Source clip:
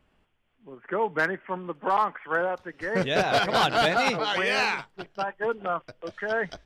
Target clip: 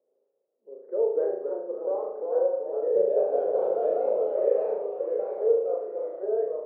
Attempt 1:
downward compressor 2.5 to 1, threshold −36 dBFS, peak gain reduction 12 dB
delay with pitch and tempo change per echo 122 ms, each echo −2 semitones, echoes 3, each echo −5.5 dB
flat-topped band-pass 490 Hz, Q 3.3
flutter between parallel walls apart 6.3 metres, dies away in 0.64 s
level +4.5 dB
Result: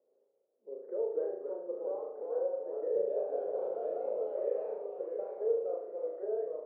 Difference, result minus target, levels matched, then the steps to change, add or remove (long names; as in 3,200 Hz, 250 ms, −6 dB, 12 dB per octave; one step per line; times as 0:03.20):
downward compressor: peak gain reduction +12 dB
remove: downward compressor 2.5 to 1, threshold −36 dBFS, peak gain reduction 12 dB